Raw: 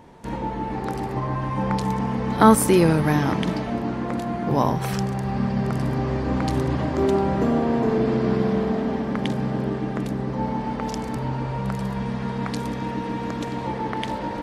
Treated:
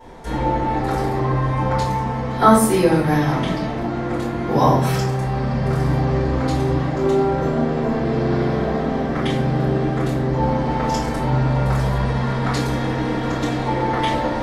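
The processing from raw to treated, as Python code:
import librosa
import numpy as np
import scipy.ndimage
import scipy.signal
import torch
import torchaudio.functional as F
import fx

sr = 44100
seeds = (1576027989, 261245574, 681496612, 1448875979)

y = fx.low_shelf(x, sr, hz=170.0, db=-11.0)
y = fx.room_shoebox(y, sr, seeds[0], volume_m3=69.0, walls='mixed', distance_m=3.9)
y = fx.rider(y, sr, range_db=5, speed_s=2.0)
y = fx.low_shelf(y, sr, hz=80.0, db=8.5)
y = y * 10.0 ** (-10.5 / 20.0)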